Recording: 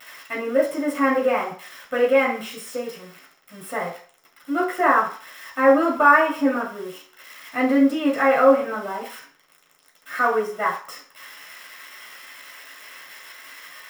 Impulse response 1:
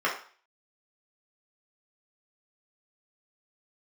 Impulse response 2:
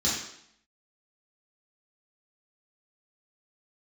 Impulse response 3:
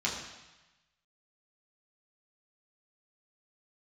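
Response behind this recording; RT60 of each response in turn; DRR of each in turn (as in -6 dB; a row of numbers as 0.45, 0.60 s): 1; 0.45, 0.70, 1.1 s; -5.0, -8.0, -5.5 dB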